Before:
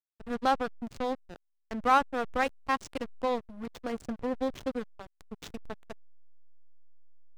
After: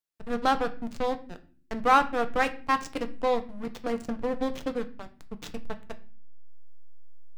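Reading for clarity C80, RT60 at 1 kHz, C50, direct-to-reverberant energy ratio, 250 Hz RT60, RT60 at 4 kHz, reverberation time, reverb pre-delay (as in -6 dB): 20.0 dB, 0.35 s, 16.0 dB, 8.0 dB, 0.80 s, 0.35 s, 0.45 s, 4 ms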